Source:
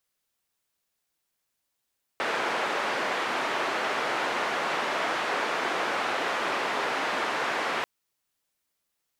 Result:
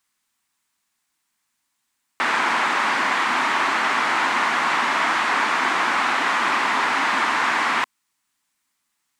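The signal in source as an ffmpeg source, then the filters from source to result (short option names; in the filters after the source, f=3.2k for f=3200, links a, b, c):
-f lavfi -i "anoisesrc=c=white:d=5.64:r=44100:seed=1,highpass=f=370,lowpass=f=1600,volume=-11.6dB"
-af "equalizer=f=250:t=o:w=1:g=10,equalizer=f=500:t=o:w=1:g=-8,equalizer=f=1k:t=o:w=1:g=10,equalizer=f=2k:t=o:w=1:g=7,equalizer=f=4k:t=o:w=1:g=3,equalizer=f=8k:t=o:w=1:g=8"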